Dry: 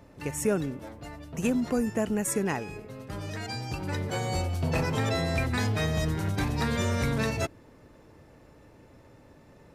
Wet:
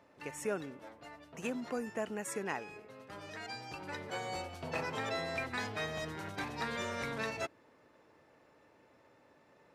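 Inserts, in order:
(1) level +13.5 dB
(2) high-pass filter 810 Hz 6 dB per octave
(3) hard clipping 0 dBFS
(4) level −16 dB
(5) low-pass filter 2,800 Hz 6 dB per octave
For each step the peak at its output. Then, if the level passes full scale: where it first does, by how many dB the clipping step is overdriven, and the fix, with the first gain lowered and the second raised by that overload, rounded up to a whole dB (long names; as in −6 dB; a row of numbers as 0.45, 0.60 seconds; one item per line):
−1.0, −4.5, −4.5, −20.5, −21.5 dBFS
no step passes full scale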